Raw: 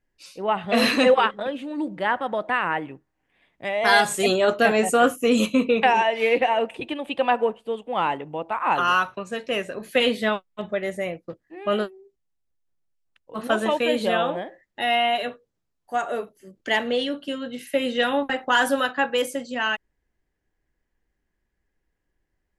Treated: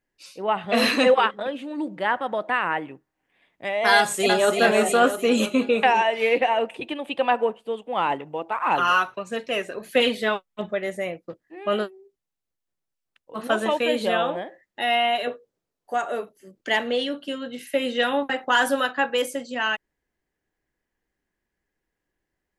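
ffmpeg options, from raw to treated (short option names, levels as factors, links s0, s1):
-filter_complex "[0:a]asplit=2[s0][s1];[s1]afade=t=in:st=3.96:d=0.01,afade=t=out:st=4.59:d=0.01,aecho=0:1:330|660|990|1320|1650|1980:0.595662|0.297831|0.148916|0.0744578|0.0372289|0.0186144[s2];[s0][s2]amix=inputs=2:normalize=0,asplit=3[s3][s4][s5];[s3]afade=t=out:st=8.08:d=0.02[s6];[s4]aphaser=in_gain=1:out_gain=1:delay=2.9:decay=0.35:speed=1.6:type=triangular,afade=t=in:st=8.08:d=0.02,afade=t=out:st=10.7:d=0.02[s7];[s5]afade=t=in:st=10.7:d=0.02[s8];[s6][s7][s8]amix=inputs=3:normalize=0,asettb=1/sr,asplit=3[s9][s10][s11];[s9]atrim=end=15.274[s12];[s10]atrim=start=15.27:end=15.94,asetpts=PTS-STARTPTS,afade=t=in:d=0.004:c=qsin,afade=t=out:st=0.666:d=0.004:c=qsin,equalizer=f=470:w=1.2:g=8[s13];[s11]atrim=start=15.936[s14];[s12][s13]acrossfade=d=0.004:c1=hsin:c2=qsin[s15];[s15][s14]acrossfade=d=0.004:c1=qsin:c2=hsin,lowshelf=f=100:g=-11.5"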